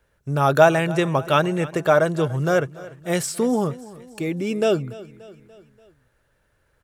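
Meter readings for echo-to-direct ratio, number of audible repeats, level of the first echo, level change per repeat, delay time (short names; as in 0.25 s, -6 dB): -17.5 dB, 3, -19.0 dB, -5.5 dB, 0.29 s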